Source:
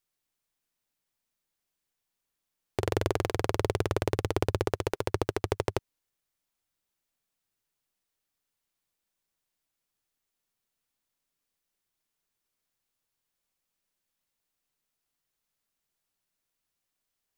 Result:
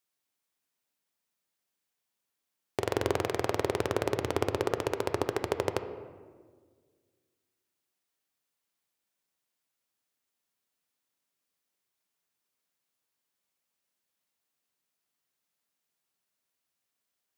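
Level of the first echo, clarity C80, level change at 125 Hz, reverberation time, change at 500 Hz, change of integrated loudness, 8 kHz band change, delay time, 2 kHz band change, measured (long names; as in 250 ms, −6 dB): no echo audible, 11.5 dB, −5.5 dB, 1.6 s, +0.5 dB, −0.5 dB, 0.0 dB, no echo audible, +0.5 dB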